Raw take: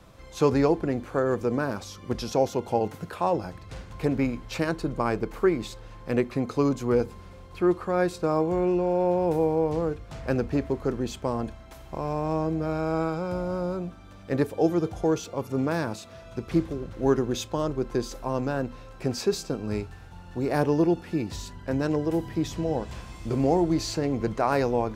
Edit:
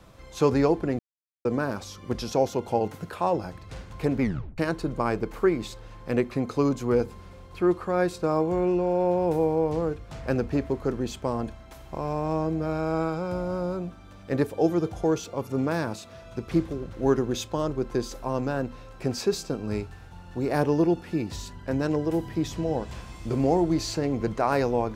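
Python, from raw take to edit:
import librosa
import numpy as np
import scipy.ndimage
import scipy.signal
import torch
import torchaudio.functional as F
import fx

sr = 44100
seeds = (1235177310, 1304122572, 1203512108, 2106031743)

y = fx.edit(x, sr, fx.silence(start_s=0.99, length_s=0.46),
    fx.tape_stop(start_s=4.21, length_s=0.37), tone=tone)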